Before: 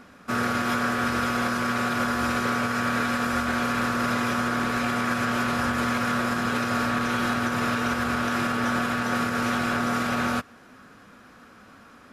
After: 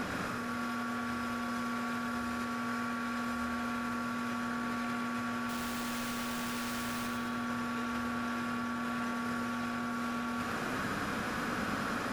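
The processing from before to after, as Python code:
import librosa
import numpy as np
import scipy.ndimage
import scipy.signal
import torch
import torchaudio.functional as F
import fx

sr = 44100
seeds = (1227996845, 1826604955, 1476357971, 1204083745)

y = fx.clip_1bit(x, sr, at=(5.49, 7.07))
y = fx.over_compress(y, sr, threshold_db=-39.0, ratio=-1.0)
y = fx.echo_feedback(y, sr, ms=104, feedback_pct=45, wet_db=-4)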